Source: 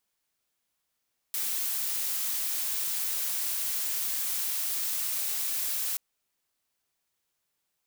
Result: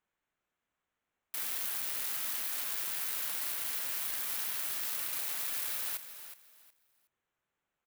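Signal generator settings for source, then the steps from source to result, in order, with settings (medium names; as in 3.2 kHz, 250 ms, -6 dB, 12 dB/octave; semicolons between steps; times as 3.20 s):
noise blue, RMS -30.5 dBFS 4.63 s
local Wiener filter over 9 samples; peaking EQ 1.5 kHz +2.5 dB; on a send: feedback delay 367 ms, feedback 23%, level -11.5 dB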